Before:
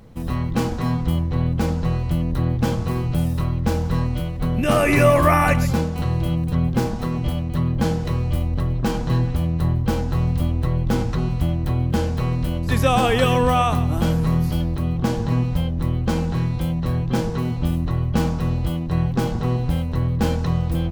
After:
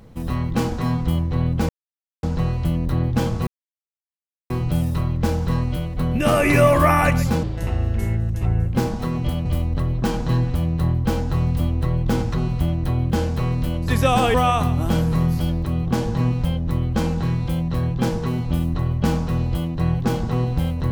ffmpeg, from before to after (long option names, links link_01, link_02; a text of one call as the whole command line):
ffmpeg -i in.wav -filter_complex "[0:a]asplit=7[link_01][link_02][link_03][link_04][link_05][link_06][link_07];[link_01]atrim=end=1.69,asetpts=PTS-STARTPTS,afade=type=out:start_time=1.686:duration=0.004:curve=hsin,apad=pad_dur=0.54[link_08];[link_02]atrim=start=1.69:end=2.93,asetpts=PTS-STARTPTS,afade=type=in:duration=0.004:curve=hsin,afade=type=out:start_time=1.236:duration=0.004:curve=hsin,apad=pad_dur=1.03[link_09];[link_03]atrim=start=2.93:end=5.864,asetpts=PTS-STARTPTS,afade=type=in:duration=0.004:curve=hsin[link_10];[link_04]atrim=start=5.86:end=6.74,asetpts=PTS-STARTPTS,asetrate=29547,aresample=44100,atrim=end_sample=57922,asetpts=PTS-STARTPTS[link_11];[link_05]atrim=start=6.736:end=7.452[link_12];[link_06]atrim=start=8.258:end=13.152[link_13];[link_07]atrim=start=13.458[link_14];[link_08][link_09][link_10]concat=n=3:v=0:a=1[link_15];[link_15][link_11]acrossfade=duration=0.004:curve1=hsin:curve2=hsin[link_16];[link_16][link_12]acrossfade=duration=0.004:curve1=hsin:curve2=hsin[link_17];[link_17][link_13]acrossfade=duration=0.004:curve1=hsin:curve2=hsin[link_18];[link_18][link_14]acrossfade=duration=0.004:curve1=hsin:curve2=hsin" out.wav